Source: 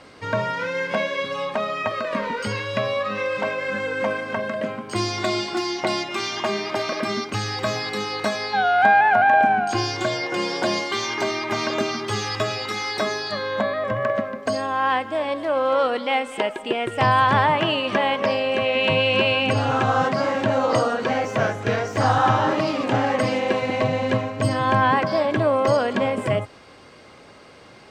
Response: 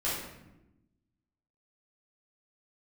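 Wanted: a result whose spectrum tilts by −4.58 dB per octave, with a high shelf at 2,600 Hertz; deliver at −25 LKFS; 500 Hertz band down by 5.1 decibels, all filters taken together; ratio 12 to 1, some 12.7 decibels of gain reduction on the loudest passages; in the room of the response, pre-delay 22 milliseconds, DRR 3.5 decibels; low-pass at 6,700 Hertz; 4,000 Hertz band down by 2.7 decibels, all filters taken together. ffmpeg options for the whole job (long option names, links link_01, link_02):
-filter_complex "[0:a]lowpass=6700,equalizer=frequency=500:width_type=o:gain=-6.5,highshelf=frequency=2600:gain=5.5,equalizer=frequency=4000:width_type=o:gain=-8.5,acompressor=threshold=-26dB:ratio=12,asplit=2[link_01][link_02];[1:a]atrim=start_sample=2205,adelay=22[link_03];[link_02][link_03]afir=irnorm=-1:irlink=0,volume=-11dB[link_04];[link_01][link_04]amix=inputs=2:normalize=0,volume=3.5dB"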